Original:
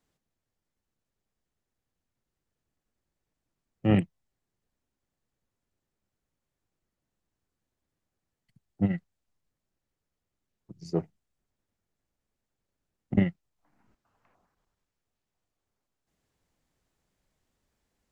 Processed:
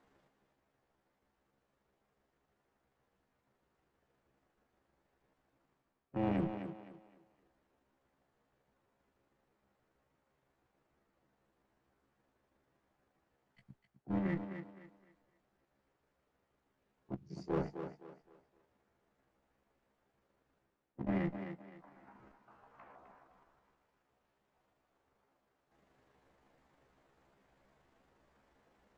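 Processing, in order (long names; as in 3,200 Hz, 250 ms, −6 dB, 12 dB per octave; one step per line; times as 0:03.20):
high-shelf EQ 2,400 Hz −10 dB
reversed playback
downward compressor 8 to 1, threshold −36 dBFS, peak gain reduction 18.5 dB
reversed playback
asymmetric clip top −46 dBFS
time stretch by overlap-add 1.6×, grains 79 ms
mid-hump overdrive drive 14 dB, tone 1,500 Hz, clips at −29.5 dBFS
on a send: feedback echo with a high-pass in the loop 258 ms, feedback 33%, high-pass 190 Hz, level −7.5 dB
on the sum: level +8.5 dB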